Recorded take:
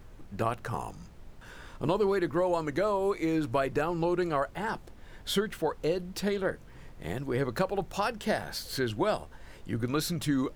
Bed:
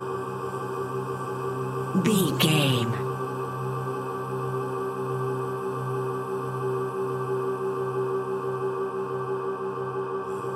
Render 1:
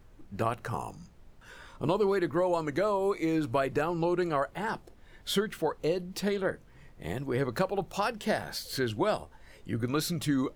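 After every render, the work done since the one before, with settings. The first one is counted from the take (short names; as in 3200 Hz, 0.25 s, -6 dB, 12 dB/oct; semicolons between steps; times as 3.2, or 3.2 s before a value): noise print and reduce 6 dB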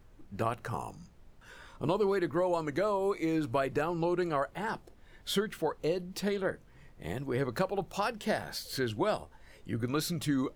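gain -2 dB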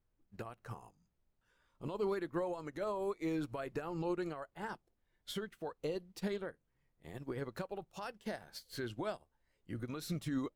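limiter -27 dBFS, peak gain reduction 9.5 dB; upward expander 2.5:1, over -47 dBFS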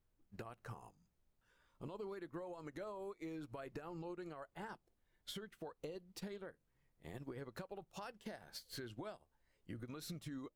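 compressor, threshold -45 dBFS, peak gain reduction 12.5 dB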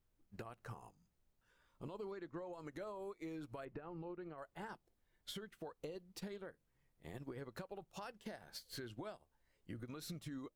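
2.11–2.53 Chebyshev low-pass 6600 Hz, order 3; 3.65–4.38 air absorption 360 m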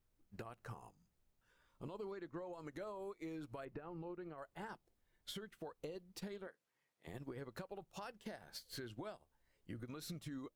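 6.47–7.07 weighting filter A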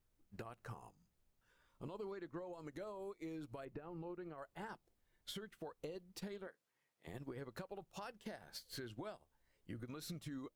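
2.39–3.93 bell 1400 Hz -3 dB 1.7 oct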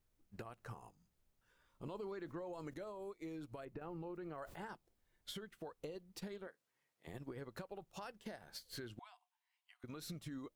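1.86–2.74 fast leveller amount 50%; 3.81–4.56 fast leveller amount 70%; 8.99–9.84 rippled Chebyshev high-pass 700 Hz, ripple 9 dB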